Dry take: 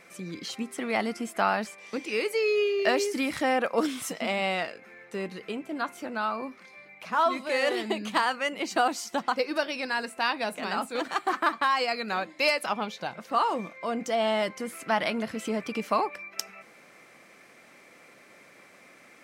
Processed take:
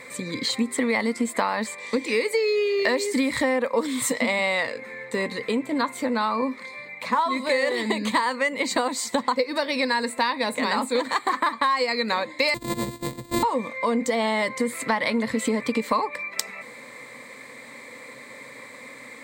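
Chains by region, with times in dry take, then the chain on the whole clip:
0:12.54–0:13.43: samples sorted by size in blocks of 128 samples + drawn EQ curve 350 Hz 0 dB, 1,400 Hz −13 dB, 11,000 Hz −6 dB
whole clip: EQ curve with evenly spaced ripples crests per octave 1, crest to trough 12 dB; downward compressor, threshold −29 dBFS; level +9 dB

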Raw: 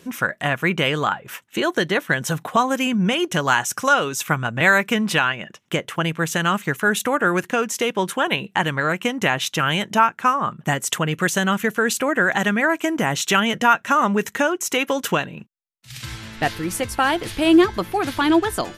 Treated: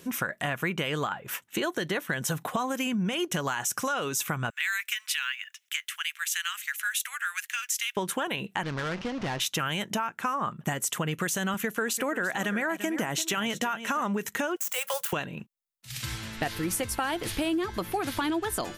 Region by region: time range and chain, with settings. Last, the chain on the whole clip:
0:04.50–0:07.97: inverse Chebyshev high-pass filter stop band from 390 Hz, stop band 70 dB + log-companded quantiser 8 bits
0:08.63–0:09.40: linear delta modulator 32 kbit/s, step −26 dBFS + high-shelf EQ 3,100 Hz −11.5 dB + tube saturation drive 24 dB, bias 0.7
0:11.54–0:14.01: high-pass filter 130 Hz + single-tap delay 340 ms −15 dB
0:14.56–0:15.13: running median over 9 samples + Chebyshev band-stop filter 200–490 Hz, order 5 + RIAA equalisation recording
whole clip: high-shelf EQ 8,800 Hz +8 dB; brickwall limiter −11 dBFS; downward compressor, threshold −23 dBFS; level −2.5 dB

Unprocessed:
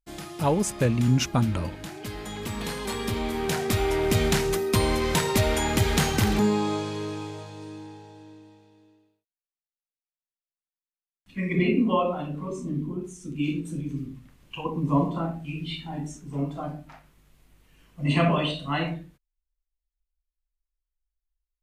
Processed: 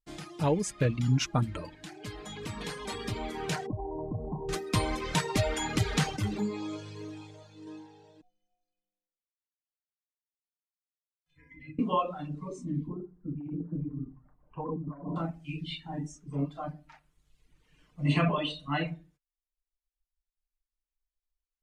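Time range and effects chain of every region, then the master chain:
0:03.66–0:04.49: linear-phase brick-wall low-pass 1,100 Hz + downward compressor, threshold −24 dBFS
0:06.16–0:07.67: leveller curve on the samples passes 1 + tuned comb filter 100 Hz, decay 0.15 s, mix 90%
0:08.21–0:11.79: frequency shifter −110 Hz + stiff-string resonator 150 Hz, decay 0.66 s, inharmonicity 0.03
0:12.88–0:15.16: hard clipping −20 dBFS + compressor whose output falls as the input rises −31 dBFS + low-pass filter 1,200 Hz 24 dB per octave
whole clip: low-pass filter 8,100 Hz 12 dB per octave; reverb reduction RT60 1.2 s; comb filter 6.6 ms, depth 39%; level −4 dB

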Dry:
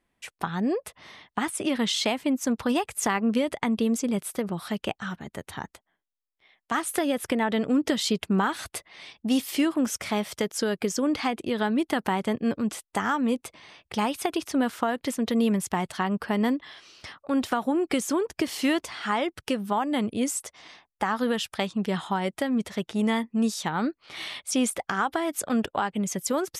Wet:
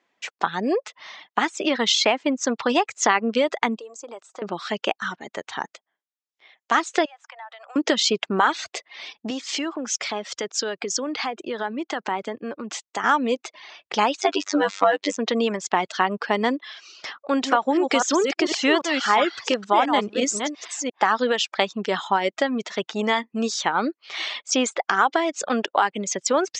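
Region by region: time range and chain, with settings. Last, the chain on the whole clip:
0:03.78–0:04.42: high-pass filter 680 Hz + flat-topped bell 2,900 Hz −12.5 dB 2.3 octaves + downward compressor 12 to 1, threshold −37 dBFS
0:07.05–0:07.76: Butterworth high-pass 700 Hz 48 dB per octave + parametric band 4,600 Hz −10.5 dB 2.9 octaves + downward compressor 4 to 1, threshold −46 dBFS
0:09.30–0:13.04: high-shelf EQ 7,500 Hz +5.5 dB + downward compressor 4 to 1, threshold −28 dBFS + multiband upward and downward expander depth 70%
0:14.21–0:15.17: high-pass filter 63 Hz + phases set to zero 97.6 Hz + leveller curve on the samples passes 1
0:17.08–0:21.06: delay that plays each chunk backwards 347 ms, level −4.5 dB + high-shelf EQ 11,000 Hz +8.5 dB
whole clip: high-pass filter 380 Hz 12 dB per octave; reverb reduction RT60 0.67 s; Butterworth low-pass 7,300 Hz 72 dB per octave; level +8 dB

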